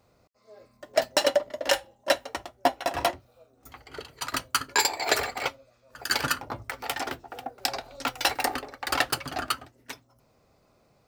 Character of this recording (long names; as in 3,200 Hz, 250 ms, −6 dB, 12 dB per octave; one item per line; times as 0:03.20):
background noise floor −65 dBFS
spectral slope −2.5 dB per octave